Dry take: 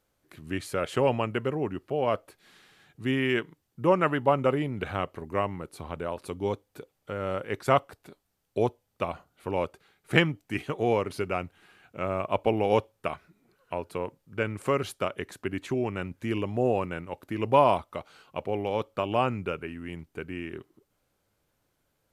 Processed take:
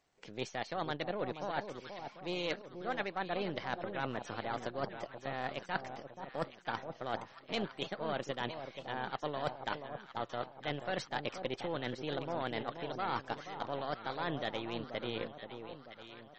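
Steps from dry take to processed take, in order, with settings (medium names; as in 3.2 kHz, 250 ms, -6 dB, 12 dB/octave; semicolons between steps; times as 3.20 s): partial rectifier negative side -7 dB; bass shelf 110 Hz -8.5 dB; reverse; compression 8:1, threshold -35 dBFS, peak gain reduction 18.5 dB; reverse; short-mantissa float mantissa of 8-bit; on a send: echo whose repeats swap between lows and highs 648 ms, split 800 Hz, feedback 68%, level -7.5 dB; on the sum: speed mistake 33 rpm record played at 45 rpm; trim +2.5 dB; MP3 32 kbps 44.1 kHz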